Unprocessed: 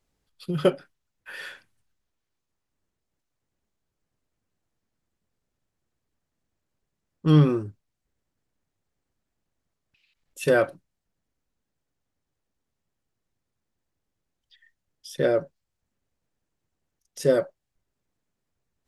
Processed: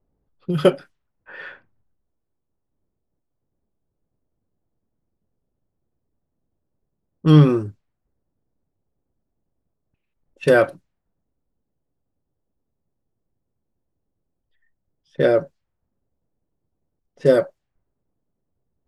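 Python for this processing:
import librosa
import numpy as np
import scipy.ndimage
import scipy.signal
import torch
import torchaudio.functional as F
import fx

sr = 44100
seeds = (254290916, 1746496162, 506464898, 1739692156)

y = fx.env_lowpass(x, sr, base_hz=680.0, full_db=-24.5)
y = y * 10.0 ** (5.5 / 20.0)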